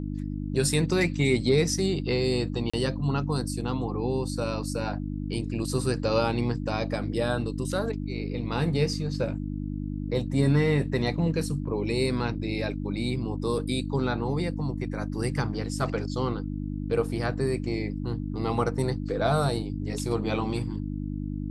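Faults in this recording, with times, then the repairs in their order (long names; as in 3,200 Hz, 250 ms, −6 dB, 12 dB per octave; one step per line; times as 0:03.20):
mains hum 50 Hz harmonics 6 −32 dBFS
0:02.70–0:02.73: drop-out 35 ms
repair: hum removal 50 Hz, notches 6
repair the gap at 0:02.70, 35 ms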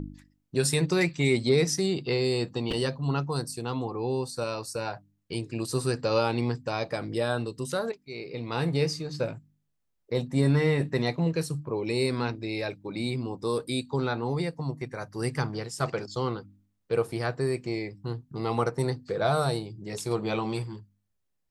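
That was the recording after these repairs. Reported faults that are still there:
none of them is left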